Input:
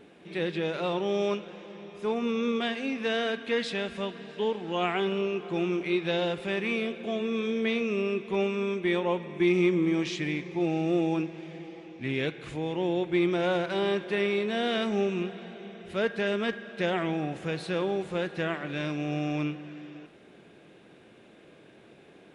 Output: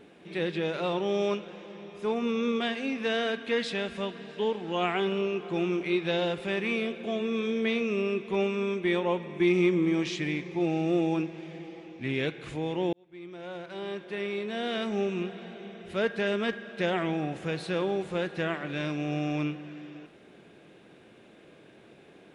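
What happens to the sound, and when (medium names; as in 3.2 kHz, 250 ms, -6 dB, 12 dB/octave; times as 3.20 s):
12.93–15.53 s: fade in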